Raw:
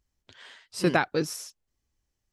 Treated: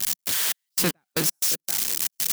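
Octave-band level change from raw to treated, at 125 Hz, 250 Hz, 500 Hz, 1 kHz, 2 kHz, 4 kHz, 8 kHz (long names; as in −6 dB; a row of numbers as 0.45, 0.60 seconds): −0.5, −2.5, −5.0, −6.0, −0.5, +12.0, +17.5 decibels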